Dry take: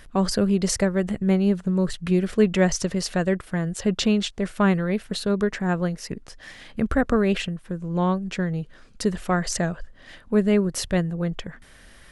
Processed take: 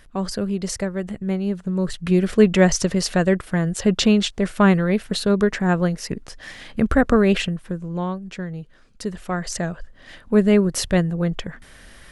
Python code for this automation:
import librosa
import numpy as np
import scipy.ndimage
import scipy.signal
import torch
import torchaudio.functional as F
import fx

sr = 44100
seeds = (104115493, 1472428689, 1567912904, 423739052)

y = fx.gain(x, sr, db=fx.line((1.47, -3.5), (2.28, 4.5), (7.63, 4.5), (8.1, -4.5), (9.06, -4.5), (10.39, 4.0)))